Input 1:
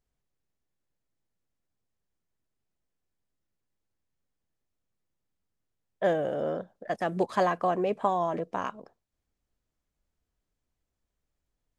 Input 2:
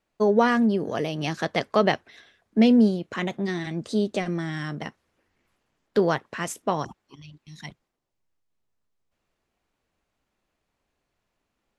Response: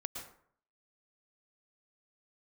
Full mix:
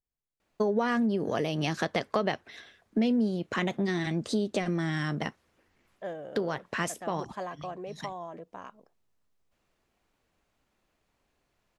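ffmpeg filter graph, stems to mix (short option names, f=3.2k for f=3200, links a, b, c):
-filter_complex "[0:a]volume=-12dB,asplit=2[a][b];[1:a]acompressor=threshold=-24dB:ratio=2,adelay=400,volume=2.5dB[c];[b]apad=whole_len=537503[d];[c][d]sidechaincompress=threshold=-45dB:ratio=8:attack=26:release=133[e];[a][e]amix=inputs=2:normalize=0,acompressor=threshold=-27dB:ratio=2"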